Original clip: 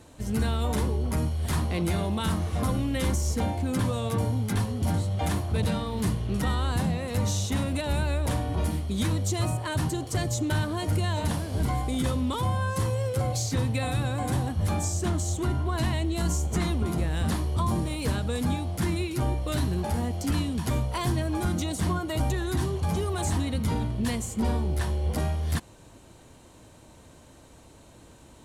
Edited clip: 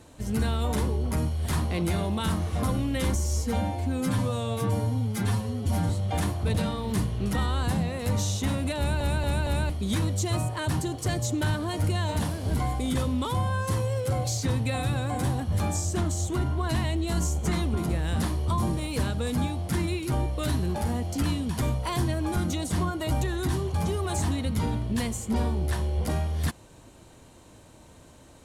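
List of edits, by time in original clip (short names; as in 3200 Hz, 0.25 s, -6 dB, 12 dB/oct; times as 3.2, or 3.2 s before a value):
3.15–4.98 stretch 1.5×
7.86 stutter in place 0.23 s, 4 plays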